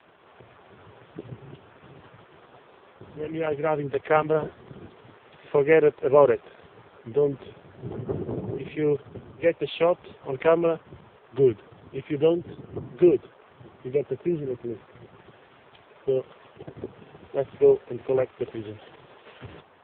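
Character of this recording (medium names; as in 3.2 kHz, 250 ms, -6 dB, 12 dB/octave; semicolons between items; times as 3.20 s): AMR-NB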